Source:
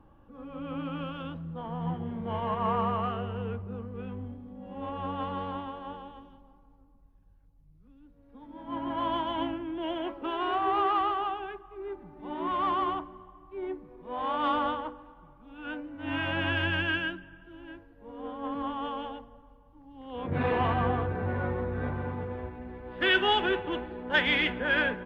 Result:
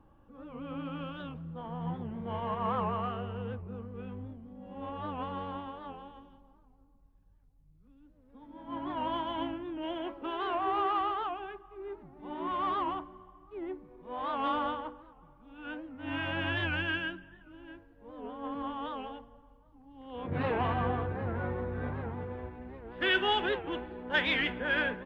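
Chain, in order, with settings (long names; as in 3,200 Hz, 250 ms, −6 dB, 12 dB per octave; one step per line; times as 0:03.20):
wow of a warped record 78 rpm, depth 160 cents
level −3.5 dB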